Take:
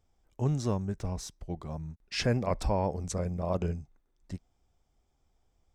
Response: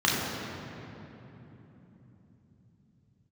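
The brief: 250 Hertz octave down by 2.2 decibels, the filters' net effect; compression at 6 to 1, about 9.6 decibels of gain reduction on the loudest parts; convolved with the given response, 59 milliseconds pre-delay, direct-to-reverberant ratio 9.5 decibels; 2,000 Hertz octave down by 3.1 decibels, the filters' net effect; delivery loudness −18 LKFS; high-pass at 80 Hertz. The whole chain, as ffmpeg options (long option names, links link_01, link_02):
-filter_complex "[0:a]highpass=80,equalizer=frequency=250:width_type=o:gain=-3,equalizer=frequency=2000:width_type=o:gain=-4,acompressor=threshold=-35dB:ratio=6,asplit=2[link_01][link_02];[1:a]atrim=start_sample=2205,adelay=59[link_03];[link_02][link_03]afir=irnorm=-1:irlink=0,volume=-25.5dB[link_04];[link_01][link_04]amix=inputs=2:normalize=0,volume=22.5dB"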